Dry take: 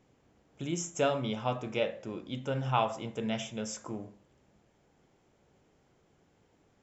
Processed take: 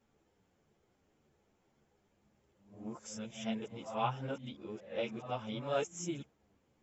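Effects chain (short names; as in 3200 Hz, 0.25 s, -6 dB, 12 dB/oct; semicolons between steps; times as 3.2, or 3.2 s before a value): whole clip reversed; ensemble effect; gain -3.5 dB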